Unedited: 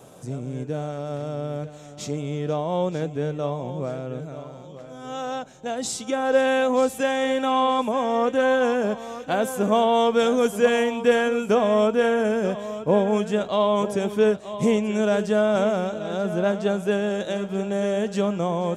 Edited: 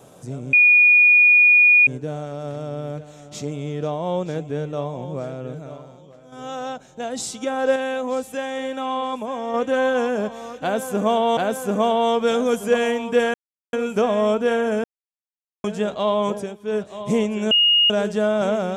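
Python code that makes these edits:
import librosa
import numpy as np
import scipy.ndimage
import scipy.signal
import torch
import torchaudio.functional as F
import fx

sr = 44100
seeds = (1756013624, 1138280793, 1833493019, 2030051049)

y = fx.edit(x, sr, fx.insert_tone(at_s=0.53, length_s=1.34, hz=2450.0, db=-9.5),
    fx.fade_out_to(start_s=4.39, length_s=0.59, curve='qua', floor_db=-7.0),
    fx.clip_gain(start_s=6.42, length_s=1.78, db=-4.5),
    fx.repeat(start_s=9.29, length_s=0.74, count=2),
    fx.insert_silence(at_s=11.26, length_s=0.39),
    fx.silence(start_s=12.37, length_s=0.8),
    fx.fade_down_up(start_s=13.85, length_s=0.54, db=-18.5, fade_s=0.26),
    fx.insert_tone(at_s=15.04, length_s=0.39, hz=2860.0, db=-12.5), tone=tone)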